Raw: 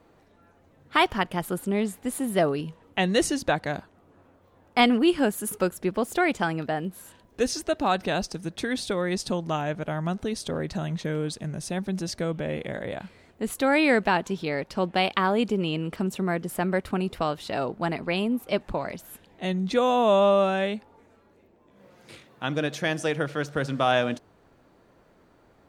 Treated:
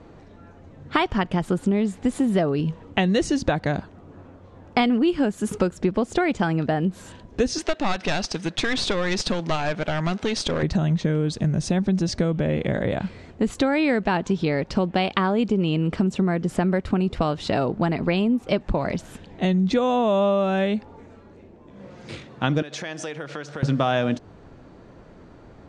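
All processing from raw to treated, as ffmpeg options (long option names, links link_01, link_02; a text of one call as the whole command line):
ffmpeg -i in.wav -filter_complex "[0:a]asettb=1/sr,asplit=3[link_01][link_02][link_03];[link_01]atrim=end=7.584[link_04];[link_02]atrim=start=7.58:end=10.63,asetpts=PTS-STARTPTS,afade=type=in:duration=0.004:curve=qsin,afade=type=out:start_time=3.046:duration=0.004:curve=qsin,highpass=frequency=490:poles=1,equalizer=frequency=2700:width_type=o:width=2.1:gain=7,aeval=exprs='clip(val(0),-1,0.0266)':channel_layout=same[link_05];[link_03]atrim=start=10.626[link_06];[link_04][link_05]acrossfade=duration=0.004:curve1=hsin:curve2=qsin[link_07];[link_07][link_06]acrossfade=duration=0.004:curve1=qsin:curve2=hsin,asettb=1/sr,asplit=3[link_08][link_09][link_10];[link_08]atrim=end=22.624[link_11];[link_09]atrim=start=22.62:end=23.63,asetpts=PTS-STARTPTS,afade=type=in:duration=0.004:curve=qsin,afade=type=out:start_time=1.006:duration=0.004:curve=qsin,acompressor=threshold=-34dB:ratio=10:attack=3.2:release=140:knee=1:detection=peak,highpass=frequency=610:poles=1[link_12];[link_10]atrim=start=23.626[link_13];[link_11][link_12]acrossfade=duration=0.004:curve1=hsin:curve2=qsin[link_14];[link_14][link_13]acrossfade=duration=0.004:curve1=qsin:curve2=hsin,lowshelf=frequency=330:gain=9,acompressor=threshold=-26dB:ratio=5,lowpass=frequency=7500:width=0.5412,lowpass=frequency=7500:width=1.3066,volume=7.5dB" out.wav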